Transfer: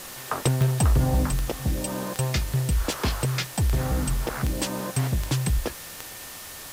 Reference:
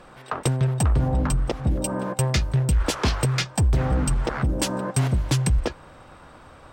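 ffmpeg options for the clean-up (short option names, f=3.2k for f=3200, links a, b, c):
-af "adeclick=t=4,bandreject=f=1.8k:w=30,afwtdn=0.011,asetnsamples=n=441:p=0,asendcmd='1.25 volume volume 3.5dB',volume=0dB"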